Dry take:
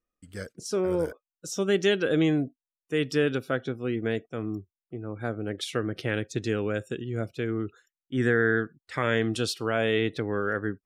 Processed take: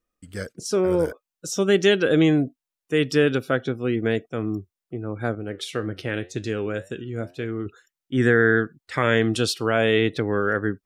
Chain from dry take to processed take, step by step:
0:05.35–0:07.66: flanger 1.9 Hz, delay 9.5 ms, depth 3.4 ms, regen +77%
level +5.5 dB

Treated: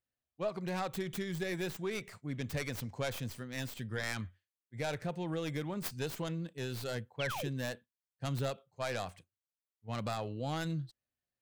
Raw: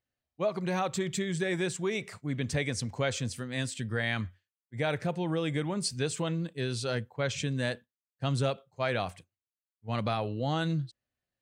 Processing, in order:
stylus tracing distortion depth 0.31 ms
sound drawn into the spectrogram fall, 0:07.19–0:07.49, 310–3,500 Hz −34 dBFS
level −6 dB

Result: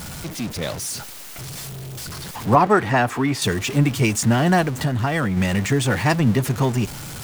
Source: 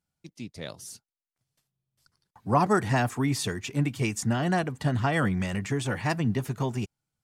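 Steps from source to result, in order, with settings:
converter with a step at zero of −34 dBFS
0:02.55–0:03.42: bass and treble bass −7 dB, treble −10 dB
0:04.61–0:05.37: downward compressor, threshold −26 dBFS, peak gain reduction 6.5 dB
level +7.5 dB

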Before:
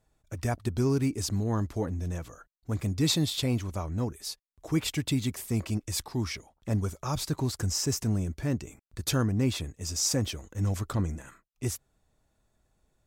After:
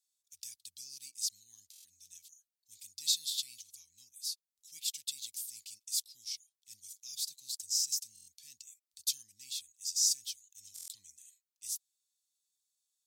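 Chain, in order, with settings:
inverse Chebyshev high-pass filter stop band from 1,500 Hz, stop band 50 dB
buffer that repeats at 0:01.71/0:08.14/0:10.74, samples 1,024, times 5

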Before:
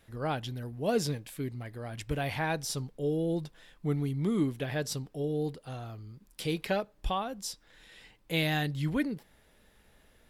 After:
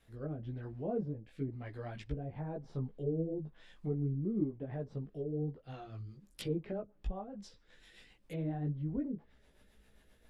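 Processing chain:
treble cut that deepens with the level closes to 530 Hz, closed at −29 dBFS
rotating-speaker cabinet horn 1 Hz, later 7.5 Hz, at 0:05.22
multi-voice chorus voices 6, 1.3 Hz, delay 17 ms, depth 3 ms

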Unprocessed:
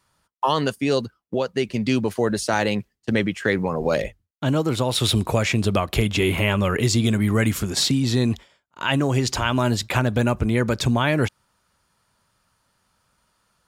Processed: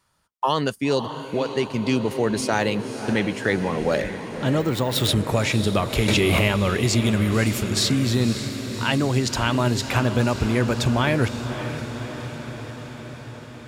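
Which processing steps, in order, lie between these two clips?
feedback delay with all-pass diffusion 562 ms, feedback 69%, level −10 dB
0:04.60–0:05.08: bad sample-rate conversion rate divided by 2×, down filtered, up hold
0:06.08–0:06.48: envelope flattener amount 100%
level −1 dB

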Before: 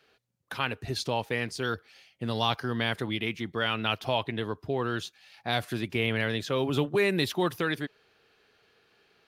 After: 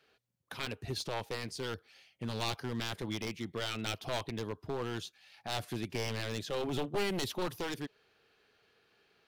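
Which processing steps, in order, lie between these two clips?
wavefolder on the positive side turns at −25.5 dBFS
dynamic equaliser 1,600 Hz, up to −5 dB, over −45 dBFS, Q 1.2
level −4.5 dB

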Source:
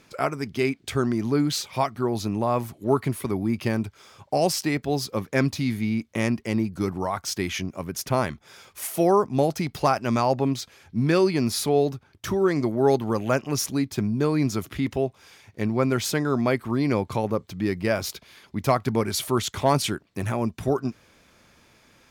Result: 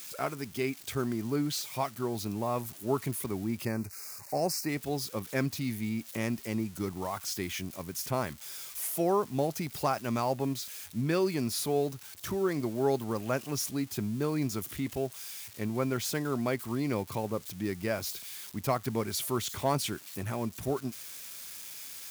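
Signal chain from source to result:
spike at every zero crossing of −27 dBFS
0:03.65–0:04.69: Butterworth band-reject 3,300 Hz, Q 1.7
level −8 dB

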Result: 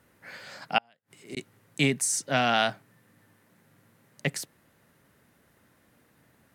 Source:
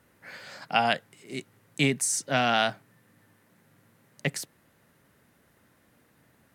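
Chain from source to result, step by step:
0:00.78–0:01.37: gate with flip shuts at −25 dBFS, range −37 dB

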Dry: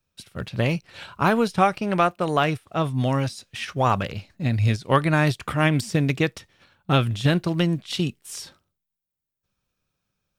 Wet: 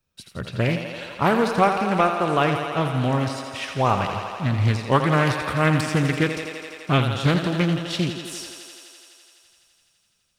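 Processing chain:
feedback echo with a high-pass in the loop 84 ms, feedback 84%, high-pass 190 Hz, level −8 dB
highs frequency-modulated by the lows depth 0.38 ms

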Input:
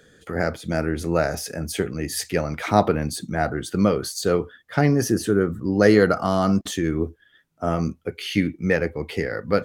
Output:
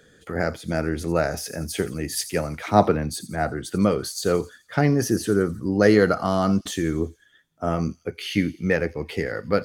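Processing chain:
delay with a high-pass on its return 86 ms, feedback 53%, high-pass 5,300 Hz, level −10.5 dB
0:02.15–0:03.65: multiband upward and downward expander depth 40%
level −1 dB

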